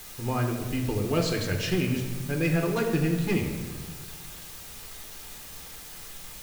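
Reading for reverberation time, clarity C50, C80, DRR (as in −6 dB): 1.4 s, 5.5 dB, 7.0 dB, 2.0 dB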